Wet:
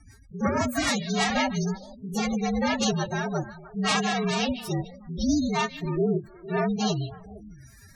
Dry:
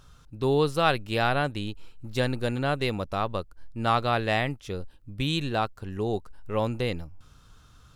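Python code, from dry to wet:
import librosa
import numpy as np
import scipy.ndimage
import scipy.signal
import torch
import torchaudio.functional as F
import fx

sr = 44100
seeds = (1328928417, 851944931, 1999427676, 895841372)

y = fx.partial_stretch(x, sr, pct=117)
y = fx.fold_sine(y, sr, drive_db=12, ceiling_db=-12.0)
y = fx.high_shelf(y, sr, hz=7400.0, db=7.5)
y = fx.hum_notches(y, sr, base_hz=60, count=6)
y = fx.notch_comb(y, sr, f0_hz=260.0)
y = fx.rotary_switch(y, sr, hz=6.3, then_hz=1.0, switch_at_s=1.19)
y = fx.pitch_keep_formants(y, sr, semitones=11.5)
y = fx.echo_stepped(y, sr, ms=152, hz=3300.0, octaves=-1.4, feedback_pct=70, wet_db=-9.0)
y = fx.spec_gate(y, sr, threshold_db=-25, keep='strong')
y = y * librosa.db_to_amplitude(-5.0)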